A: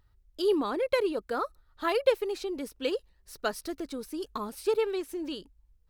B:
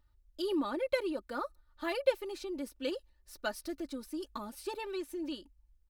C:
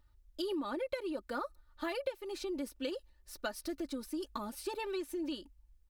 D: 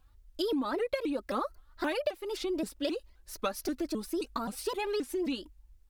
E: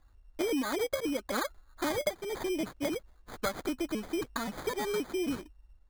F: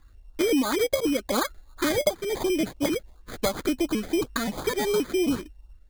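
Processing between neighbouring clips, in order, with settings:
comb filter 3.4 ms, depth 76%; level −7 dB
downward compressor 8 to 1, threshold −36 dBFS, peak gain reduction 14.5 dB; level +2.5 dB
pitch modulation by a square or saw wave saw up 3.8 Hz, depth 250 cents; level +5.5 dB
decimation without filtering 16×
auto-filter notch saw up 2.8 Hz 600–2,200 Hz; level +8.5 dB

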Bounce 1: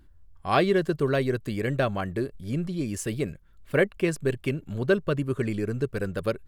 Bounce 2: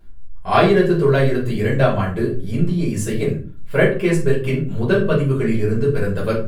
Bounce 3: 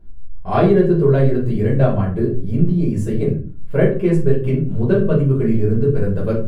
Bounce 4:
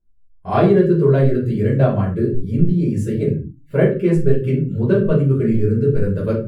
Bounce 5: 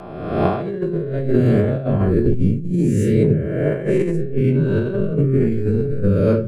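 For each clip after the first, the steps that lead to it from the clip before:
rectangular room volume 260 cubic metres, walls furnished, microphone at 5.1 metres; level −2 dB
tilt shelving filter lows +8 dB, about 940 Hz; level −4.5 dB
noise reduction from a noise print of the clip's start 26 dB
peak hold with a rise ahead of every peak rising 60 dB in 1.25 s; compressor whose output falls as the input rises −15 dBFS, ratio −0.5; rotating-speaker cabinet horn 1.2 Hz

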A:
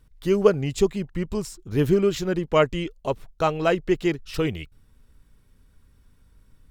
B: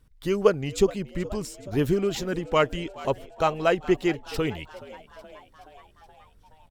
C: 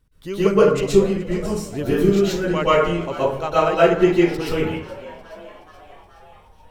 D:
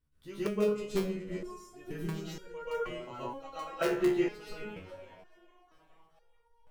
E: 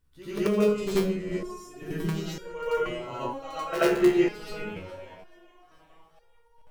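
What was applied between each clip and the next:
harmonic and percussive parts rebalanced harmonic −5 dB; echo with shifted repeats 424 ms, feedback 65%, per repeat +92 Hz, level −19 dB
dense smooth reverb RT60 0.67 s, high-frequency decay 0.5×, pre-delay 110 ms, DRR −10 dB; level −4 dB
in parallel at −7.5 dB: wrap-around overflow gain 5 dB; on the sum: step-sequenced resonator 2.1 Hz 71–470 Hz; level −8.5 dB
backwards echo 87 ms −8.5 dB; level +6.5 dB

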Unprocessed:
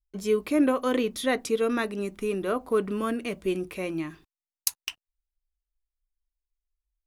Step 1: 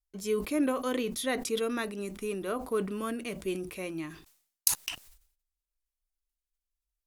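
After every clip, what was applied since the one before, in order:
parametric band 12,000 Hz +7.5 dB 2.2 octaves
level that may fall only so fast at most 100 dB per second
level −6 dB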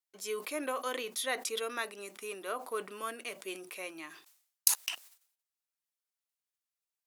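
high-pass filter 630 Hz 12 dB per octave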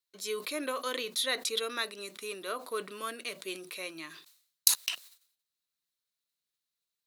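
thirty-one-band graphic EQ 160 Hz +7 dB, 800 Hz −9 dB, 4,000 Hz +11 dB
level +1.5 dB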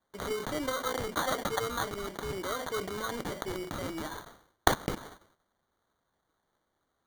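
in parallel at −2.5 dB: compressor whose output falls as the input rises −45 dBFS, ratio −1
on the sum: decimation without filtering 17×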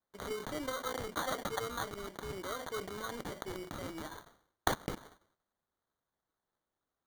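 leveller curve on the samples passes 1
level −9 dB

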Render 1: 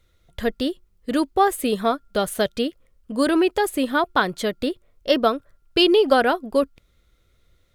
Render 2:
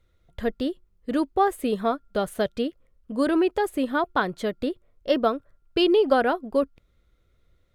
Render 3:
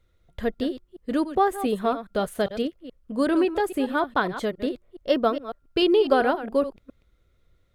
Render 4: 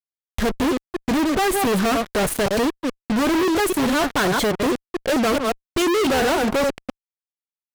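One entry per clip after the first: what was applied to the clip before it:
high-shelf EQ 2,500 Hz −9 dB; level −2.5 dB
delay that plays each chunk backwards 138 ms, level −12 dB
fuzz pedal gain 46 dB, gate −42 dBFS; level −4.5 dB

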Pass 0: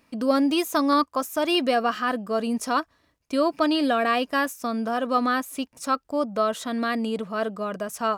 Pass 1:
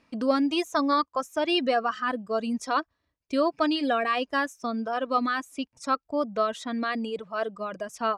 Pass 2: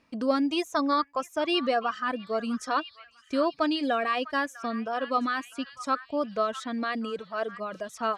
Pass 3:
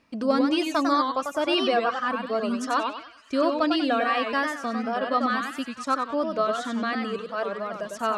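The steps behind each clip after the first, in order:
low-pass filter 6,400 Hz 12 dB per octave; reverb reduction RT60 1.7 s; level −1.5 dB
echo through a band-pass that steps 650 ms, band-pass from 1,600 Hz, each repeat 0.7 octaves, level −12 dB; level −1.5 dB
feedback echo with a swinging delay time 96 ms, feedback 33%, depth 177 cents, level −5 dB; level +2 dB

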